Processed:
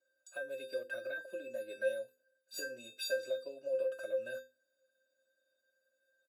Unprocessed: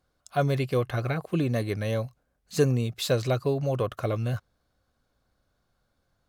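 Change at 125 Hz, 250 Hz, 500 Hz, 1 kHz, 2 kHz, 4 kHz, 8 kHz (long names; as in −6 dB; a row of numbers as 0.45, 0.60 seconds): below −40 dB, −27.0 dB, −8.5 dB, below −25 dB, −4.0 dB, −9.0 dB, −8.5 dB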